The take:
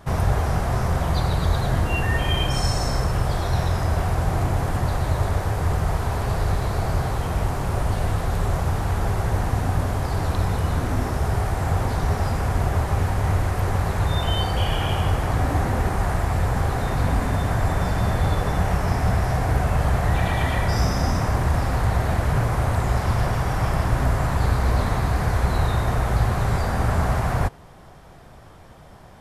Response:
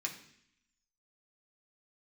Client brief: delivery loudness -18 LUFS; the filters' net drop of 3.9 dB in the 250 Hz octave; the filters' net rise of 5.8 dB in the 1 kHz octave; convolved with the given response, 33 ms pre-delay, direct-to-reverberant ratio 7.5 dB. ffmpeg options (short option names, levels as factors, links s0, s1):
-filter_complex "[0:a]equalizer=f=250:t=o:g=-7,equalizer=f=1000:t=o:g=8,asplit=2[s0][s1];[1:a]atrim=start_sample=2205,adelay=33[s2];[s1][s2]afir=irnorm=-1:irlink=0,volume=0.376[s3];[s0][s3]amix=inputs=2:normalize=0,volume=1.58"